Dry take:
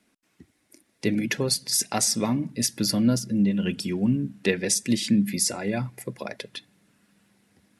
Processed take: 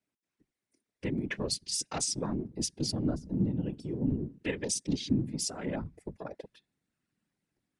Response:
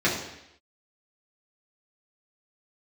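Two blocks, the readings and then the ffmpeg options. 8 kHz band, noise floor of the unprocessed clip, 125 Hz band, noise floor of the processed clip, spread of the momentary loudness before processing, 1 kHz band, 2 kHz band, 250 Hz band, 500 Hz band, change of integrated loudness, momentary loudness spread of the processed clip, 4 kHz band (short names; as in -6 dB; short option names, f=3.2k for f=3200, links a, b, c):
-9.0 dB, -70 dBFS, -5.5 dB, under -85 dBFS, 13 LU, -8.5 dB, -10.0 dB, -9.0 dB, -7.5 dB, -8.5 dB, 13 LU, -8.5 dB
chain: -filter_complex "[0:a]afwtdn=0.02,asplit=2[a][b];[b]acompressor=threshold=-33dB:ratio=6,volume=-2dB[c];[a][c]amix=inputs=2:normalize=0,afftfilt=real='hypot(re,im)*cos(2*PI*random(0))':imag='hypot(re,im)*sin(2*PI*random(1))':win_size=512:overlap=0.75,aresample=22050,aresample=44100,volume=-3.5dB"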